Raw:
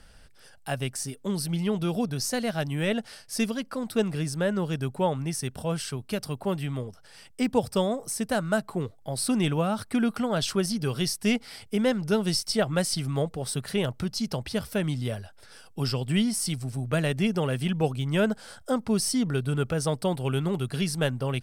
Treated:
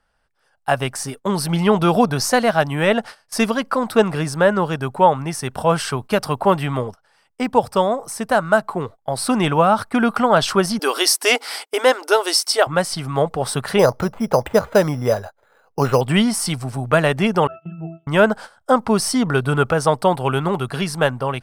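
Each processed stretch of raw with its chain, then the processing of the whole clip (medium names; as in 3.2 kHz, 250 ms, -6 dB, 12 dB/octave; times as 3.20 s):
10.79–12.67 s: brick-wall FIR high-pass 260 Hz + treble shelf 3.4 kHz +10 dB
13.79–16.01 s: peaking EQ 510 Hz +8 dB 0.69 oct + careless resampling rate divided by 8×, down filtered, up hold
17.47–18.07 s: tone controls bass +2 dB, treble -7 dB + pitch-class resonator E, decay 0.59 s + tape noise reduction on one side only encoder only
whole clip: gate -40 dBFS, range -18 dB; peaking EQ 1 kHz +14 dB 1.9 oct; level rider; trim -1 dB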